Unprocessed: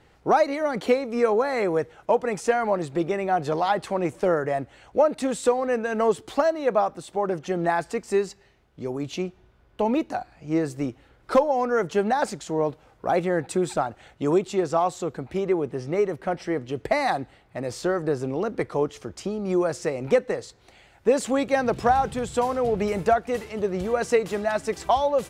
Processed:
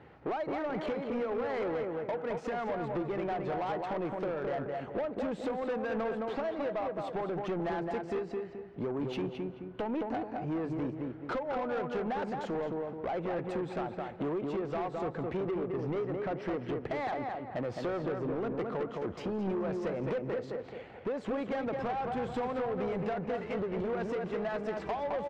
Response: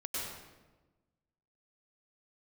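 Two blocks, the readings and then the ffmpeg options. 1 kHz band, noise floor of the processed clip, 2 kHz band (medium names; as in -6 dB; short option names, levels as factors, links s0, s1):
-11.0 dB, -47 dBFS, -10.5 dB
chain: -filter_complex "[0:a]highpass=99,equalizer=f=2700:w=0.67:g=3.5,acompressor=threshold=0.0282:ratio=12,asplit=2[s0][s1];[s1]adelay=215,lowpass=f=2400:p=1,volume=0.596,asplit=2[s2][s3];[s3]adelay=215,lowpass=f=2400:p=1,volume=0.39,asplit=2[s4][s5];[s5]adelay=215,lowpass=f=2400:p=1,volume=0.39,asplit=2[s6][s7];[s7]adelay=215,lowpass=f=2400:p=1,volume=0.39,asplit=2[s8][s9];[s9]adelay=215,lowpass=f=2400:p=1,volume=0.39[s10];[s0][s2][s4][s6][s8][s10]amix=inputs=6:normalize=0,asoftclip=type=tanh:threshold=0.0224,asplit=2[s11][s12];[1:a]atrim=start_sample=2205,adelay=57[s13];[s12][s13]afir=irnorm=-1:irlink=0,volume=0.0891[s14];[s11][s14]amix=inputs=2:normalize=0,adynamicsmooth=sensitivity=2.5:basefreq=1700,volume=1.68"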